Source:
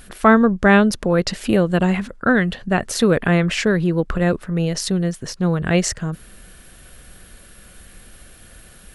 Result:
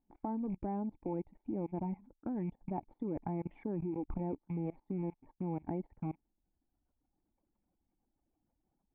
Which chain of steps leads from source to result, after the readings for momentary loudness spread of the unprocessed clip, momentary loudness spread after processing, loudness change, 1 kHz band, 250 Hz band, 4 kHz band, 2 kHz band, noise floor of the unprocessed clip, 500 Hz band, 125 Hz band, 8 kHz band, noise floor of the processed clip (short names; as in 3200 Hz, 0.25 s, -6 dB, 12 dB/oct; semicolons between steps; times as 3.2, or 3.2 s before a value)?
8 LU, 5 LU, -21.5 dB, -21.5 dB, -19.5 dB, under -40 dB, under -40 dB, -46 dBFS, -23.0 dB, -20.0 dB, under -40 dB, -84 dBFS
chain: rattling part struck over -32 dBFS, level -17 dBFS; reverb removal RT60 1.8 s; in parallel at -4 dB: crossover distortion -29 dBFS; on the sum: compressor 8:1, threshold -13 dBFS, peak gain reduction 10 dB; vocal tract filter u; dynamic EQ 1300 Hz, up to -6 dB, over -51 dBFS, Q 1.4; gate -53 dBFS, range -12 dB; resonant low shelf 630 Hz -7.5 dB, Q 1.5; level quantiser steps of 23 dB; gain +10 dB